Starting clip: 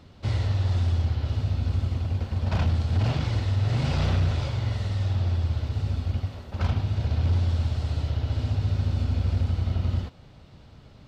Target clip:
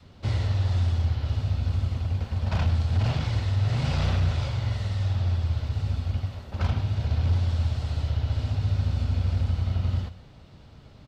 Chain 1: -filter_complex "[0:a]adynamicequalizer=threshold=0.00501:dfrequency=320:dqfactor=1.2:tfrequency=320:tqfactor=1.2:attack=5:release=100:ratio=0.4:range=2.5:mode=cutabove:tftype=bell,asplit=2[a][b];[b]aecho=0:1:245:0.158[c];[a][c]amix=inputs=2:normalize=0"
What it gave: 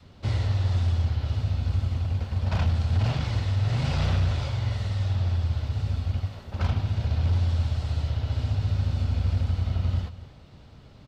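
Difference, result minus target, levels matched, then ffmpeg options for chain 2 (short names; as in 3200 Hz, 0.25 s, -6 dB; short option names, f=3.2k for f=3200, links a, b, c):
echo 0.112 s late
-filter_complex "[0:a]adynamicequalizer=threshold=0.00501:dfrequency=320:dqfactor=1.2:tfrequency=320:tqfactor=1.2:attack=5:release=100:ratio=0.4:range=2.5:mode=cutabove:tftype=bell,asplit=2[a][b];[b]aecho=0:1:133:0.158[c];[a][c]amix=inputs=2:normalize=0"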